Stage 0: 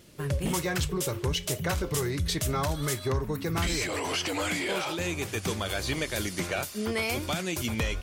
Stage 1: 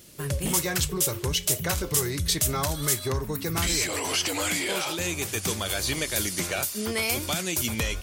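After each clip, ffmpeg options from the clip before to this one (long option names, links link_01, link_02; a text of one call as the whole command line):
ffmpeg -i in.wav -af "highshelf=frequency=4800:gain=12" out.wav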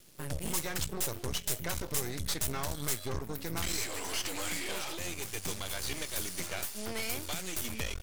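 ffmpeg -i in.wav -af "aeval=exprs='max(val(0),0)':channel_layout=same,volume=-4.5dB" out.wav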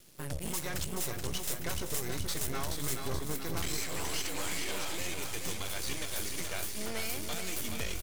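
ffmpeg -i in.wav -filter_complex "[0:a]asplit=2[link_01][link_02];[link_02]alimiter=level_in=1.5dB:limit=-24dB:level=0:latency=1:release=157,volume=-1.5dB,volume=1dB[link_03];[link_01][link_03]amix=inputs=2:normalize=0,aecho=1:1:427|854|1281|1708|2135|2562|2989:0.501|0.281|0.157|0.088|0.0493|0.0276|0.0155,volume=-6.5dB" out.wav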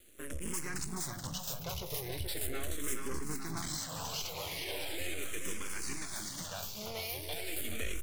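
ffmpeg -i in.wav -filter_complex "[0:a]asplit=2[link_01][link_02];[link_02]afreqshift=-0.39[link_03];[link_01][link_03]amix=inputs=2:normalize=1" out.wav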